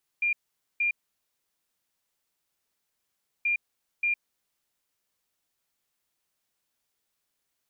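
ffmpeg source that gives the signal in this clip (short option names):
-f lavfi -i "aevalsrc='0.075*sin(2*PI*2400*t)*clip(min(mod(mod(t,3.23),0.58),0.11-mod(mod(t,3.23),0.58))/0.005,0,1)*lt(mod(t,3.23),1.16)':d=6.46:s=44100"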